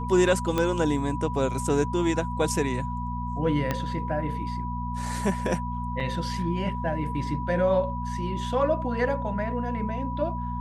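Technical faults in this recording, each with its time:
hum 60 Hz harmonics 4 -32 dBFS
tone 980 Hz -33 dBFS
0.58 pop -12 dBFS
3.71 pop -12 dBFS
6–6.01 gap 5.2 ms

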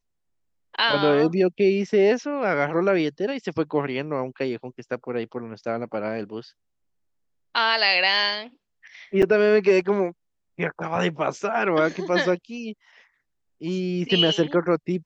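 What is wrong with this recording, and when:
9.22–9.23 gap 6.3 ms

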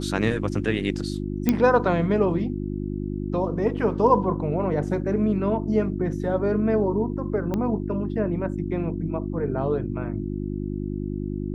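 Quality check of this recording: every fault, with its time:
hum 50 Hz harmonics 7 -29 dBFS
1.49 pop -7 dBFS
7.54 pop -15 dBFS

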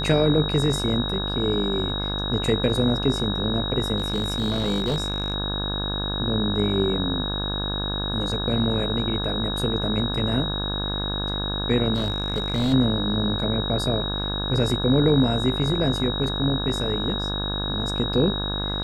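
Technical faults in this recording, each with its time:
buzz 50 Hz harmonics 34 -29 dBFS
tone 3800 Hz -28 dBFS
3.98–5.34 clipped -19 dBFS
11.94–12.74 clipped -18.5 dBFS

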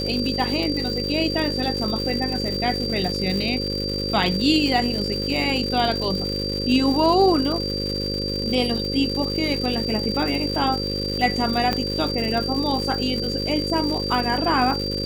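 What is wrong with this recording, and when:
buzz 50 Hz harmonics 11 -28 dBFS
crackle 240/s -27 dBFS
tone 4700 Hz -27 dBFS
11.73 pop -8 dBFS

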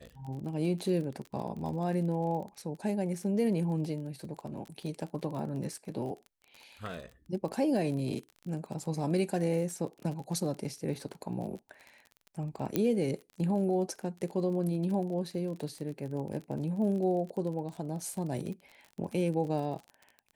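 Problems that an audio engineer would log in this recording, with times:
crackle 34/s -38 dBFS
12.76 pop -14 dBFS

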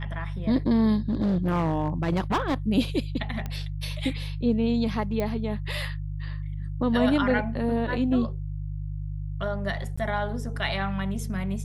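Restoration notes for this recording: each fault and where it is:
hum 50 Hz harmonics 3 -32 dBFS
1.09–2.54 clipped -20 dBFS
3.46 pop -19 dBFS
5.2 pop -16 dBFS
9.96–9.97 gap 15 ms

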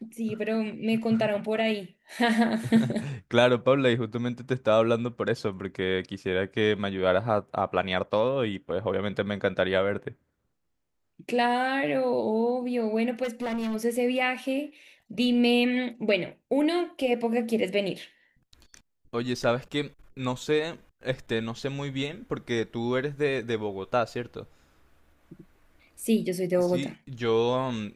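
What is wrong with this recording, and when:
13.23–13.76 clipped -27 dBFS

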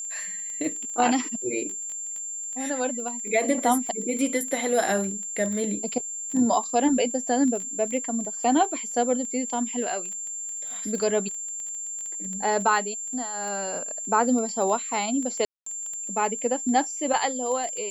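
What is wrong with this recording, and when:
crackle 12/s -30 dBFS
tone 7300 Hz -31 dBFS
15.45–15.66 gap 0.214 s

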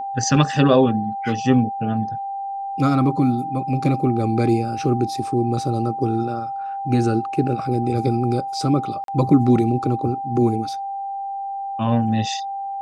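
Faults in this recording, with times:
tone 790 Hz -25 dBFS
9.04–9.08 gap 42 ms

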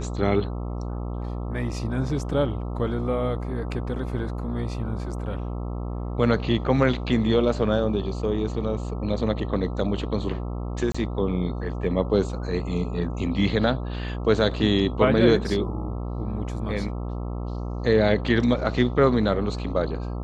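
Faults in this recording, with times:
buzz 60 Hz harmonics 22 -30 dBFS
10.92–10.95 gap 25 ms

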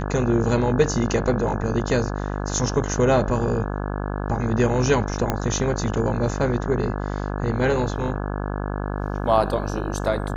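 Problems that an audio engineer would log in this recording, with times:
buzz 50 Hz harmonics 34 -27 dBFS
5.3 pop -8 dBFS

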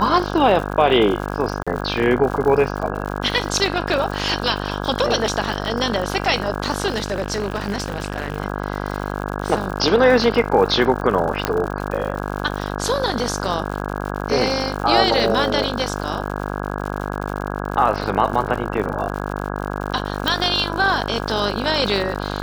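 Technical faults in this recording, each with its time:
buzz 50 Hz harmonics 33 -26 dBFS
crackle 110/s -27 dBFS
1.63–1.67 gap 36 ms
6.9–8.38 clipped -17 dBFS
11.45 pop -3 dBFS
20.28 pop

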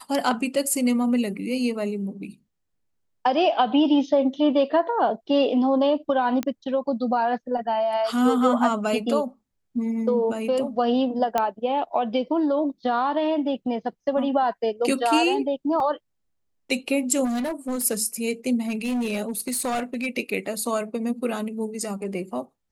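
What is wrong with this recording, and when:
6.43 pop -13 dBFS
11.38 pop -9 dBFS
15.8 gap 2.3 ms
17.24–17.85 clipped -23.5 dBFS
18.68–20.07 clipped -22 dBFS

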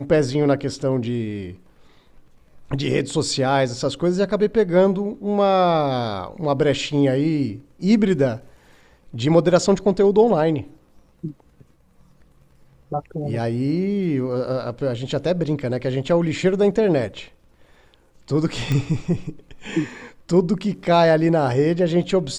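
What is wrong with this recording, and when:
18.72 pop -11 dBFS

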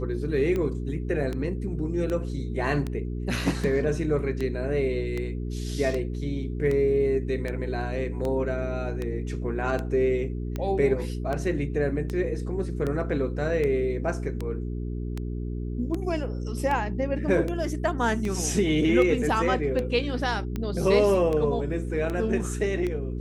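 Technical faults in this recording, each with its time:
hum 60 Hz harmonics 7 -31 dBFS
tick 78 rpm -18 dBFS

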